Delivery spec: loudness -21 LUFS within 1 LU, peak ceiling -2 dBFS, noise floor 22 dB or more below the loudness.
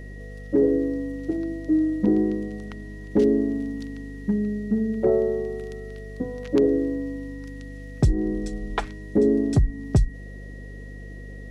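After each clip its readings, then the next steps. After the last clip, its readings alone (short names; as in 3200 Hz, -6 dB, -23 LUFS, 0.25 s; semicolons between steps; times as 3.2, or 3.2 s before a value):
hum 50 Hz; harmonics up to 250 Hz; hum level -36 dBFS; steady tone 1900 Hz; tone level -47 dBFS; loudness -24.5 LUFS; peak -9.5 dBFS; loudness target -21.0 LUFS
-> de-hum 50 Hz, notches 5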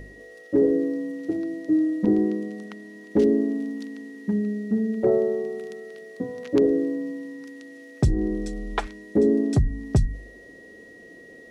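hum none; steady tone 1900 Hz; tone level -47 dBFS
-> notch 1900 Hz, Q 30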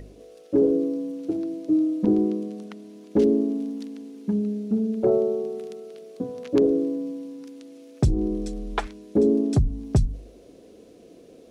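steady tone none; loudness -24.5 LUFS; peak -9.5 dBFS; loudness target -21.0 LUFS
-> gain +3.5 dB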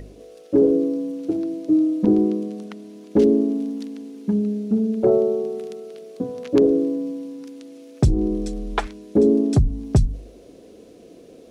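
loudness -21.0 LUFS; peak -6.0 dBFS; noise floor -46 dBFS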